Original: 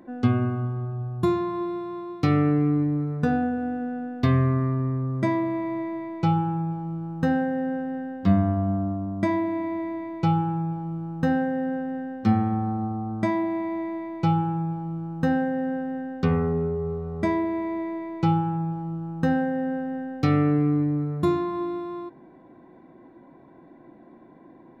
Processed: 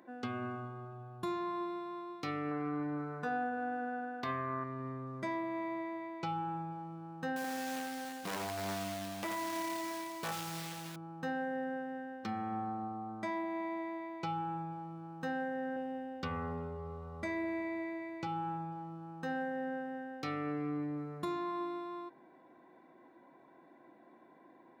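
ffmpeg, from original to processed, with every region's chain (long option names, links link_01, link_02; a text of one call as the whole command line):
ffmpeg -i in.wav -filter_complex "[0:a]asettb=1/sr,asplit=3[link_01][link_02][link_03];[link_01]atrim=end=2.514[link_04];[link_02]atrim=start=2.51:end=4.64,asetpts=PTS-STARTPTS,afade=type=in:duration=0.004:curve=qsin,afade=type=out:start_time=2.126:duration=0.004:curve=qsin,equalizer=frequency=1000:width=0.89:gain=8,aeval=exprs='val(0)+0.00282*sin(2*PI*1500*n/s)':channel_layout=same[link_05];[link_03]atrim=start=4.636[link_06];[link_04][link_05]acrossfade=duration=0.004:curve1=hsin:curve2=qsin[link_07];[link_07][link_06]acrossfade=duration=0.004:curve1=qsin:curve2=hsin,asettb=1/sr,asplit=3[link_08][link_09][link_10];[link_08]atrim=end=7.364[link_11];[link_09]atrim=start=7.36:end=10.96,asetpts=PTS-STARTPTS,afade=type=in:duration=0.004:curve=qsin,afade=type=out:start_time=3.596:duration=0.004:curve=qsin,acrusher=bits=3:mode=log:mix=0:aa=0.000001,aecho=1:1:83:0.473,atrim=end_sample=158760,aeval=exprs='0.126*(abs(mod(val(0)/0.126+3,4)-2)-1)':channel_layout=same[link_12];[link_10]atrim=start=10.956[link_13];[link_11][link_12]acrossfade=duration=0.004:curve1=hsin:curve2=qsin[link_14];[link_14][link_13]acrossfade=duration=0.004:curve1=qsin:curve2=hsin,asettb=1/sr,asplit=3[link_15][link_16][link_17];[link_15]atrim=end=15.764[link_18];[link_16]atrim=start=15.76:end=18.27,asetpts=PTS-STARTPTS,afade=type=in:duration=0.004:curve=qsin,afade=type=out:start_time=2.506:duration=0.004:curve=qsin,lowshelf=frequency=170:width_type=q:width=1.5:gain=9,aecho=1:1:3.5:0.61,atrim=end_sample=110691[link_19];[link_17]atrim=start=18.266[link_20];[link_18][link_19]acrossfade=duration=0.004:curve1=hsin:curve2=qsin[link_21];[link_21][link_20]acrossfade=duration=0.004:curve1=qsin:curve2=hsin,highpass=frequency=830:poles=1,alimiter=level_in=1dB:limit=-24dB:level=0:latency=1:release=247,volume=-1dB,volume=-3dB" out.wav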